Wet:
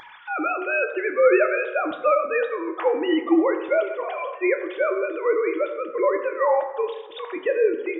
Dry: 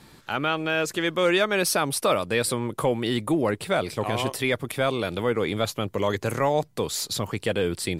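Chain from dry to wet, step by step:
three sine waves on the formant tracks
upward compression, threshold −34 dBFS
on a send: convolution reverb RT60 1.3 s, pre-delay 4 ms, DRR 4 dB
on the sum: level +1 dB

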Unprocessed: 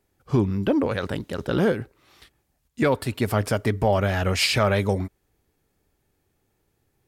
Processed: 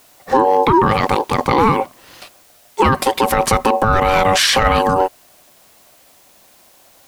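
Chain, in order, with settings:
ring modulation 660 Hz
background noise white −67 dBFS
boost into a limiter +19 dB
level −2.5 dB

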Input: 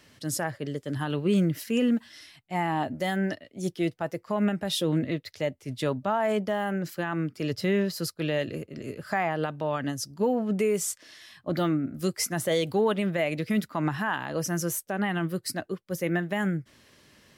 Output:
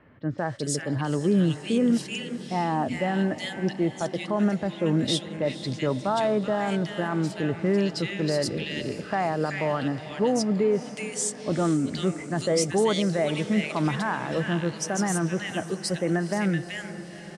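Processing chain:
Chebyshev low-pass filter 9,100 Hz, order 4
multiband delay without the direct sound lows, highs 380 ms, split 1,900 Hz
in parallel at −2 dB: brickwall limiter −24.5 dBFS, peak gain reduction 10 dB
on the sum: feedback delay with all-pass diffusion 465 ms, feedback 63%, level −14 dB

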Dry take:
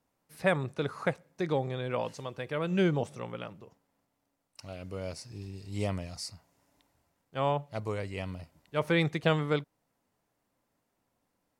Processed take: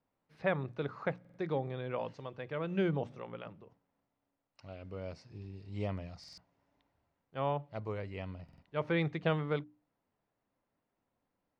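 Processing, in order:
high-frequency loss of the air 220 metres
mains-hum notches 60/120/180/240/300 Hz
buffer that repeats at 0:01.20/0:06.19/0:08.44, samples 2,048, times 3
level −4 dB

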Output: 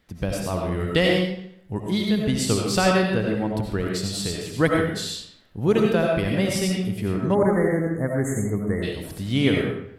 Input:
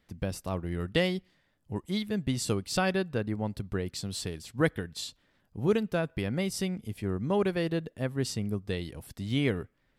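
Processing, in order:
convolution reverb RT60 0.70 s, pre-delay 45 ms, DRR −1 dB
time-frequency box erased 0:07.34–0:08.83, 2,200–6,300 Hz
level +5.5 dB

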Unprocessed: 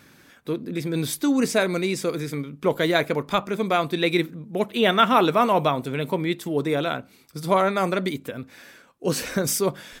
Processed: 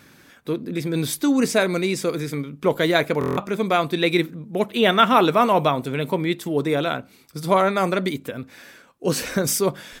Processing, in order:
buffer that repeats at 0:03.19, samples 1,024, times 7
level +2 dB

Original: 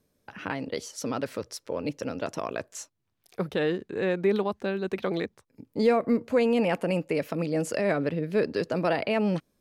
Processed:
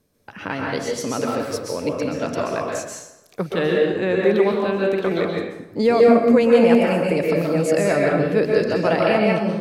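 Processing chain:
dense smooth reverb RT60 0.95 s, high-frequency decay 0.7×, pre-delay 115 ms, DRR −2 dB
level +4.5 dB

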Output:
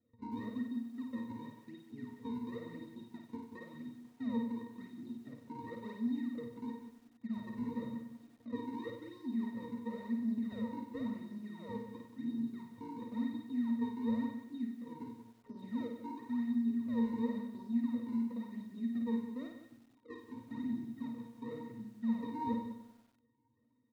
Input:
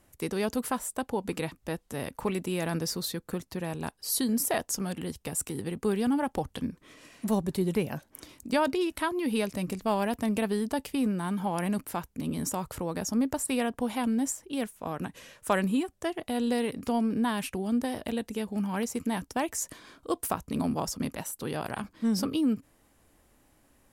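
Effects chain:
rippled gain that drifts along the octave scale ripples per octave 1.4, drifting +1.8 Hz, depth 6 dB
meter weighting curve A
brick-wall band-stop 430–9,000 Hz
high-pass filter 50 Hz 6 dB per octave
treble cut that deepens with the level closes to 440 Hz, closed at −33 dBFS
high-shelf EQ 6,500 Hz −11.5 dB
in parallel at 0 dB: brickwall limiter −35 dBFS, peak gain reduction 8.5 dB
on the sum: sample-and-hold swept by an LFO 40×, swing 160% 0.95 Hz
gain into a clipping stage and back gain 31 dB
resonances in every octave A#, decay 0.12 s
loudspeakers that aren't time-aligned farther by 18 metres −4 dB, 62 metres −11 dB
feedback echo at a low word length 95 ms, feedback 55%, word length 11 bits, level −10 dB
level +3 dB

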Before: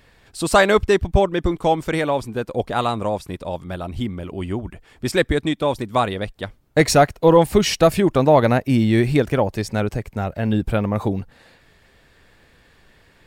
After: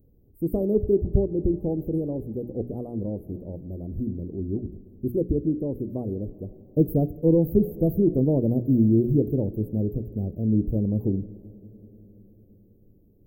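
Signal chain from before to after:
inverse Chebyshev band-stop filter 1,700–5,700 Hz, stop band 80 dB
bass and treble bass −2 dB, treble +4 dB
mains-hum notches 60/120/180/240/300/360/420 Hz
convolution reverb RT60 4.7 s, pre-delay 10 ms, DRR 18 dB

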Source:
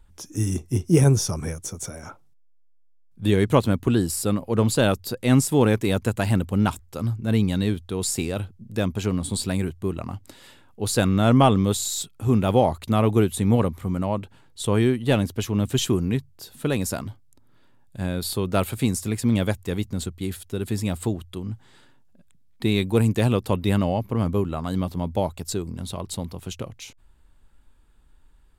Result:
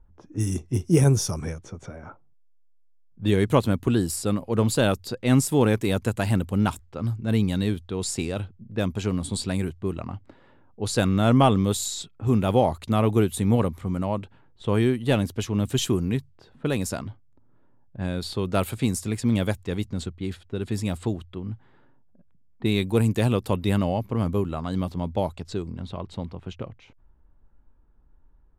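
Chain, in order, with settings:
low-pass that shuts in the quiet parts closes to 950 Hz, open at −20 dBFS
level −1.5 dB

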